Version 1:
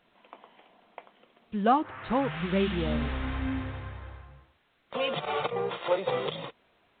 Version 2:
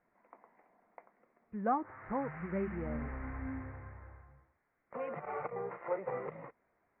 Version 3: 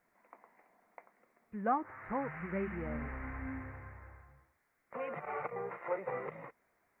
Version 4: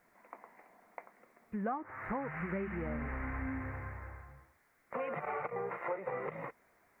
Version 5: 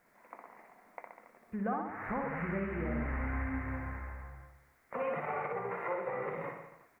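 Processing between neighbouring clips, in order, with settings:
elliptic low-pass 2.1 kHz, stop band 40 dB; trim -8.5 dB
treble shelf 2.1 kHz +11.5 dB; trim -1.5 dB
compression 5:1, threshold -41 dBFS, peak gain reduction 13.5 dB; trim +6.5 dB
reverse bouncing-ball echo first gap 60 ms, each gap 1.1×, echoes 5

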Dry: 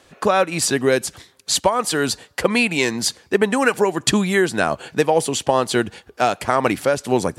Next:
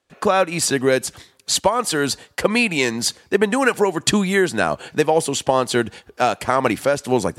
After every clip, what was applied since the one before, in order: gate with hold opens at -41 dBFS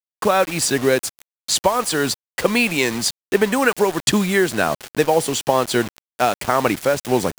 bit crusher 5-bit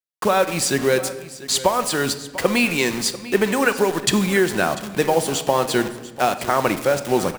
delay 694 ms -17 dB; on a send at -10 dB: reverberation RT60 1.3 s, pre-delay 6 ms; on the sum: trim -1.5 dB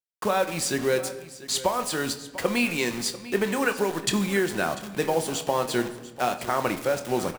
doubling 25 ms -11.5 dB; trim -6.5 dB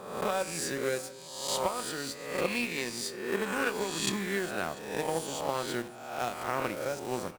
reverse spectral sustain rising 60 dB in 1.12 s; Chebyshev shaper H 7 -24 dB, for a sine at -5.5 dBFS; trim -8 dB

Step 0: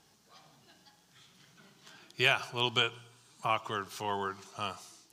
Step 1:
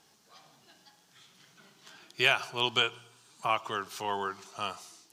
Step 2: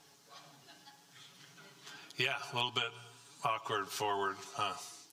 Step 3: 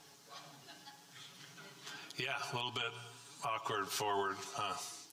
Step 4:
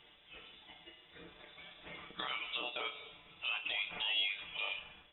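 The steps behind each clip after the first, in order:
bass shelf 150 Hz -10 dB; trim +2 dB
comb 7.1 ms, depth 72%; compression 12:1, threshold -30 dBFS, peak gain reduction 14.5 dB
peak limiter -29.5 dBFS, peak gain reduction 11.5 dB; trim +2.5 dB
flutter echo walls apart 5.2 m, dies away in 0.21 s; low-pass that closes with the level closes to 2.9 kHz, closed at -38 dBFS; frequency inversion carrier 3.7 kHz

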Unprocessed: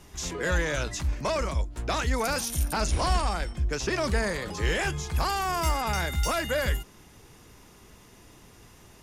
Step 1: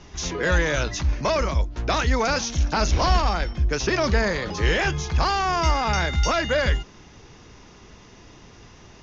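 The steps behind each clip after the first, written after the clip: steep low-pass 6.6 kHz 96 dB/octave; trim +5.5 dB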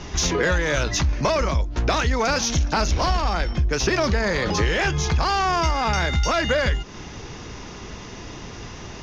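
in parallel at -10.5 dB: one-sided clip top -28.5 dBFS, bottom -13.5 dBFS; on the sum: compression 6:1, threshold -27 dBFS, peak gain reduction 13 dB; trim +8.5 dB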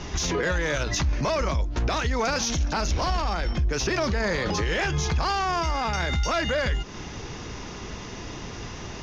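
peak limiter -17.5 dBFS, peak gain reduction 8 dB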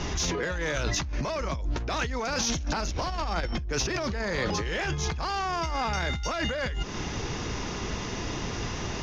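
compressor with a negative ratio -29 dBFS, ratio -1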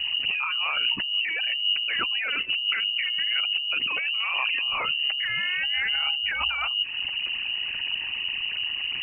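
resonances exaggerated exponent 2; frequency inversion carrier 2.9 kHz; trim +2 dB

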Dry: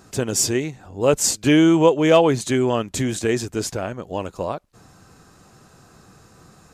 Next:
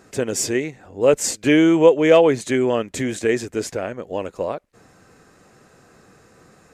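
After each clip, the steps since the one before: graphic EQ 250/500/2000/8000 Hz +4/+9/+10/+3 dB; trim -6.5 dB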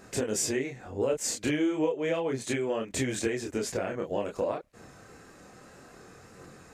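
compression 8:1, threshold -26 dBFS, peak gain reduction 18.5 dB; chorus voices 2, 0.31 Hz, delay 26 ms, depth 4.2 ms; wow and flutter 26 cents; trim +3.5 dB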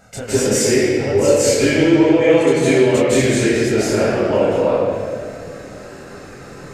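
reverberation RT60 2.3 s, pre-delay 150 ms, DRR -11.5 dB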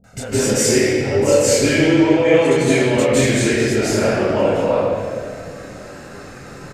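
bands offset in time lows, highs 40 ms, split 410 Hz; trim +1 dB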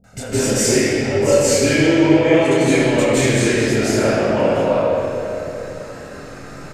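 algorithmic reverb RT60 3 s, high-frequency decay 0.65×, pre-delay 0 ms, DRR 3.5 dB; trim -1 dB

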